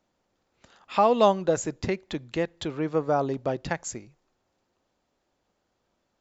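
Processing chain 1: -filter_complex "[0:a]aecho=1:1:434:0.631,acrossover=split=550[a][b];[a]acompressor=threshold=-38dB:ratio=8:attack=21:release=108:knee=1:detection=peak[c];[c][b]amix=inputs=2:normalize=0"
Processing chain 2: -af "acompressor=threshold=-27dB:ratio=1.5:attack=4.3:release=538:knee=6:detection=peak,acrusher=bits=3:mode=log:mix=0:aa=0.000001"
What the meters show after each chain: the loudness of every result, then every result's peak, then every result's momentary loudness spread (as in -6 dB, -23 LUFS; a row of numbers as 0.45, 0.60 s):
-28.5, -30.0 LUFS; -10.0, -11.5 dBFS; 12, 9 LU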